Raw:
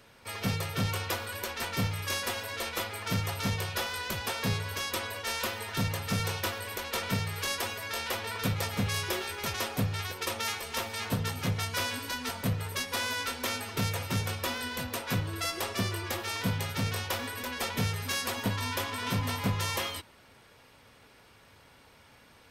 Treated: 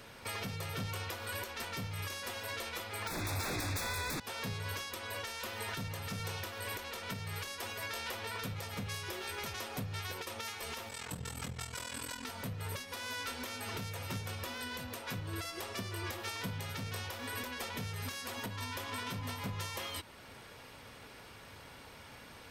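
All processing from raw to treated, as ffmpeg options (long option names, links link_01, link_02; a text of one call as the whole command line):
ffmpeg -i in.wav -filter_complex "[0:a]asettb=1/sr,asplit=3[link_01][link_02][link_03];[link_01]atrim=end=3.074[link_04];[link_02]atrim=start=3.07:end=4.2,asetpts=PTS-STARTPTS,afade=type=in:duration=0.004:curve=qsin,afade=type=out:start_time=1.126:duration=0.004:curve=qsin,asubboost=boost=8.5:cutoff=170,aeval=exprs='0.15*sin(PI/2*6.31*val(0)/0.15)':channel_layout=same,asuperstop=centerf=3000:order=12:qfactor=4.4[link_05];[link_03]atrim=start=4.196[link_06];[link_04][link_05]acrossfade=duration=0.004:curve1=hsin:curve2=qsin[link_07];[link_07][link_06]acrossfade=duration=0.004:curve1=qsin:curve2=hsin,asettb=1/sr,asplit=3[link_08][link_09][link_10];[link_08]atrim=end=10.894[link_11];[link_09]atrim=start=10.89:end=12.25,asetpts=PTS-STARTPTS,afade=type=in:duration=0.004:curve=qsin,afade=type=out:start_time=1.356:duration=0.004:curve=qsin,equalizer=frequency=7800:width_type=o:width=0.2:gain=14.5,aeval=exprs='val(0)*sin(2*PI*21*n/s)':channel_layout=same[link_12];[link_10]atrim=start=12.246[link_13];[link_11][link_12]acrossfade=duration=0.004:curve1=hsin:curve2=qsin[link_14];[link_14][link_13]acrossfade=duration=0.004:curve1=qsin:curve2=hsin,acompressor=threshold=-37dB:ratio=4,alimiter=level_in=9.5dB:limit=-24dB:level=0:latency=1:release=437,volume=-9.5dB,volume=5dB" out.wav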